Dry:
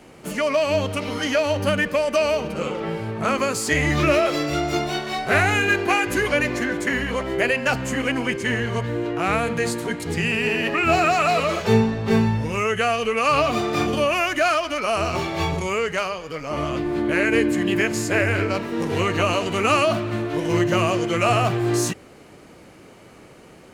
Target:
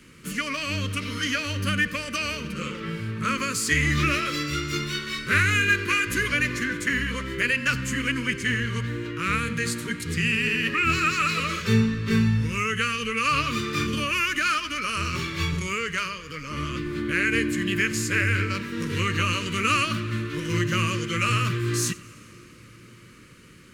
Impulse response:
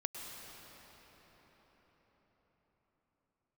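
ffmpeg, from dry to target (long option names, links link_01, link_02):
-filter_complex "[0:a]asuperstop=centerf=740:order=4:qfactor=1,equalizer=frequency=400:width_type=o:width=1.1:gain=-8.5,asplit=2[link_01][link_02];[1:a]atrim=start_sample=2205,adelay=90[link_03];[link_02][link_03]afir=irnorm=-1:irlink=0,volume=-18.5dB[link_04];[link_01][link_04]amix=inputs=2:normalize=0"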